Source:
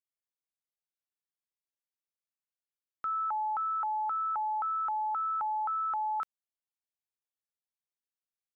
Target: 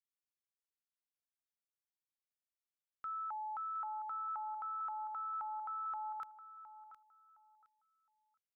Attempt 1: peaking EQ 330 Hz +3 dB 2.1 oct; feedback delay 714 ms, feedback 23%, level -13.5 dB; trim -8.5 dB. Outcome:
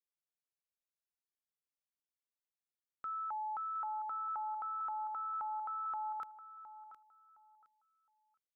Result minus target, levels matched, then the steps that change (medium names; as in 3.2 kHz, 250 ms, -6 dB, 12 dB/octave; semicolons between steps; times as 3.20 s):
250 Hz band +5.0 dB
change: peaking EQ 330 Hz -5 dB 2.1 oct